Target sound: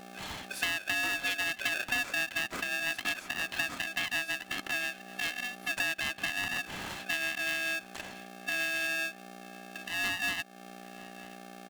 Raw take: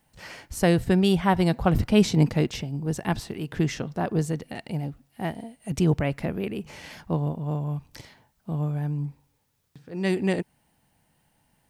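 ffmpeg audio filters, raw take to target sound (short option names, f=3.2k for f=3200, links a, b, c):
-filter_complex "[0:a]afftfilt=real='real(if(lt(b,920),b+92*(1-2*mod(floor(b/92),2)),b),0)':imag='imag(if(lt(b,920),b+92*(1-2*mod(floor(b/92),2)),b),0)':win_size=2048:overlap=0.75,aeval=exprs='val(0)+0.00891*(sin(2*PI*60*n/s)+sin(2*PI*2*60*n/s)/2+sin(2*PI*3*60*n/s)/3+sin(2*PI*4*60*n/s)/4+sin(2*PI*5*60*n/s)/5)':c=same,acompressor=mode=upward:threshold=-26dB:ratio=2.5,asoftclip=type=tanh:threshold=-9.5dB,adynamicequalizer=threshold=0.0141:dfrequency=890:dqfactor=1:tfrequency=890:tqfactor=1:attack=5:release=100:ratio=0.375:range=2.5:mode=boostabove:tftype=bell,aecho=1:1:2.7:0.4,aexciter=amount=1.2:drive=8.3:freq=8.5k,aemphasis=mode=reproduction:type=75fm,asplit=2[a][b];[b]adelay=932.9,volume=-22dB,highshelf=f=4k:g=-21[c];[a][c]amix=inputs=2:normalize=0,acompressor=threshold=-29dB:ratio=8,highpass=270,aeval=exprs='val(0)*sgn(sin(2*PI*490*n/s))':c=same"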